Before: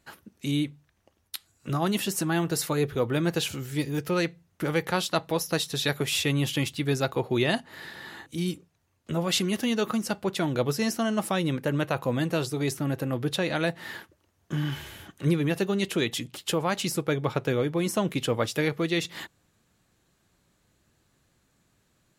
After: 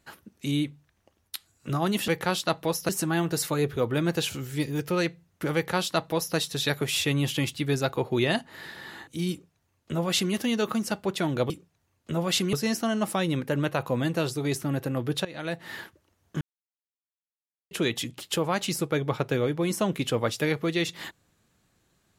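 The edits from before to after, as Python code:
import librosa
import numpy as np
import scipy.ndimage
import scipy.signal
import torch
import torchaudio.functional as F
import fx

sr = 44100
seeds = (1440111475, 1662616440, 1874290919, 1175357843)

y = fx.edit(x, sr, fx.duplicate(start_s=4.74, length_s=0.81, to_s=2.08),
    fx.duplicate(start_s=8.5, length_s=1.03, to_s=10.69),
    fx.fade_in_from(start_s=13.41, length_s=0.49, floor_db=-18.5),
    fx.silence(start_s=14.57, length_s=1.3), tone=tone)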